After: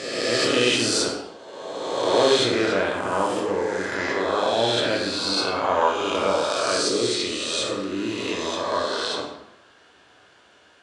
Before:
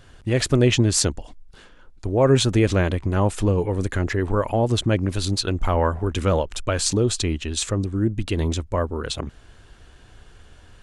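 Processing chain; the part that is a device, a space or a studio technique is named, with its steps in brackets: reverse spectral sustain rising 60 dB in 1.78 s; supermarket ceiling speaker (band-pass 340–6700 Hz; reverberation RT60 0.85 s, pre-delay 9 ms, DRR -1 dB); dynamic bell 6.9 kHz, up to -5 dB, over -40 dBFS, Q 4.2; trim -5 dB

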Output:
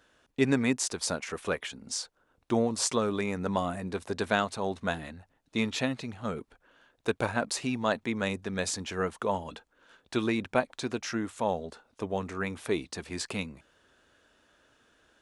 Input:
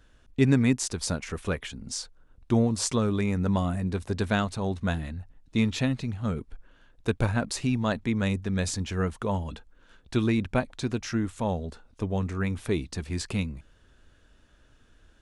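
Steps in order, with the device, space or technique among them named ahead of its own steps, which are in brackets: filter by subtraction (in parallel: low-pass 610 Hz 12 dB/octave + polarity flip)

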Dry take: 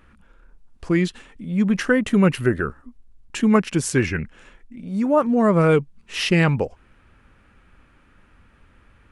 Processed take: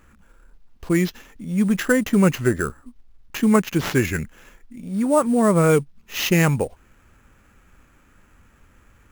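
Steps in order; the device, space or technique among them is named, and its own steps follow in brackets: early companding sampler (sample-rate reducer 9.1 kHz, jitter 0%; companded quantiser 8-bit)

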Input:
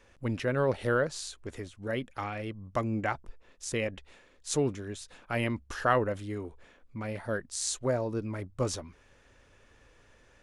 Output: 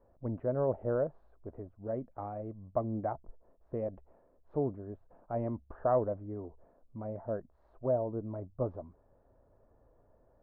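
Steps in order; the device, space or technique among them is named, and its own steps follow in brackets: under water (low-pass 980 Hz 24 dB/octave; peaking EQ 650 Hz +9 dB 0.28 oct); trim -4.5 dB

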